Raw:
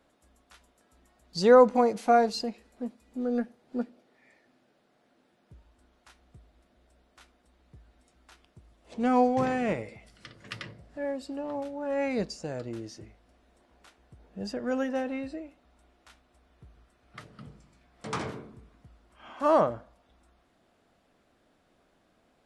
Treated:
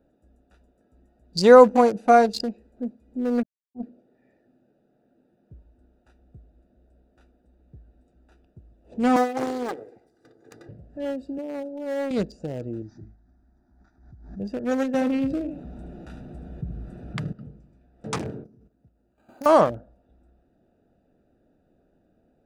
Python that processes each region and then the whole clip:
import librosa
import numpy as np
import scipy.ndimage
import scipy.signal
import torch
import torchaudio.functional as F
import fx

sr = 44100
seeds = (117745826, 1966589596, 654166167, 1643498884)

y = fx.chain(x, sr, fx.delta_hold(step_db=-40.5),
    fx.bandpass_q(hz=210.0, q=2.5),
    fx.power_curve(exponent=3.0), at=(3.43, 3.83))
y = fx.chain(y, sr, fx.lower_of_two(delay_ms=2.5),
    fx.highpass(hz=260.0, slope=12),
    fx.peak_eq(hz=2700.0, db=-12.0, octaves=0.54), at=(9.16, 10.69))
y = fx.chain(y, sr, fx.highpass(hz=330.0, slope=12),
    fx.peak_eq(hz=2600.0, db=-12.0, octaves=2.7),
    fx.leveller(passes=1), at=(11.38, 12.11))
y = fx.chain(y, sr, fx.cvsd(bps=32000),
    fx.fixed_phaser(hz=1200.0, stages=4),
    fx.pre_swell(db_per_s=76.0), at=(12.82, 14.4))
y = fx.chain(y, sr, fx.peak_eq(hz=160.0, db=12.5, octaves=0.87),
    fx.echo_single(ms=74, db=-11.5),
    fx.env_flatten(amount_pct=50), at=(14.94, 17.33))
y = fx.chain(y, sr, fx.highpass(hz=87.0, slope=12),
    fx.level_steps(step_db=12),
    fx.resample_bad(factor=8, down='none', up='hold'), at=(18.44, 19.46))
y = fx.wiener(y, sr, points=41)
y = fx.high_shelf(y, sr, hz=4900.0, db=9.5)
y = y * 10.0 ** (6.0 / 20.0)